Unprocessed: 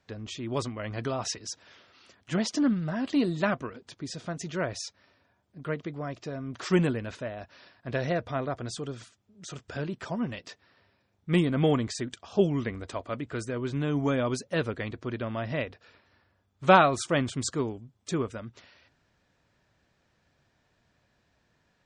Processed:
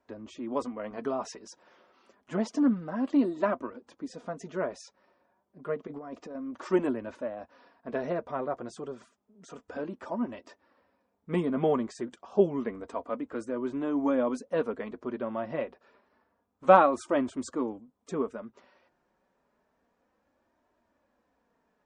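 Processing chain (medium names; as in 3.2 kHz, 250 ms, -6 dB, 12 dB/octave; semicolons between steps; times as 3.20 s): graphic EQ 125/250/500/1000/4000 Hz -7/+9/+8/+10/-5 dB; 5.87–6.35 s: compressor with a negative ratio -31 dBFS, ratio -1; flange 0.29 Hz, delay 3 ms, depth 2.7 ms, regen -34%; trim -6 dB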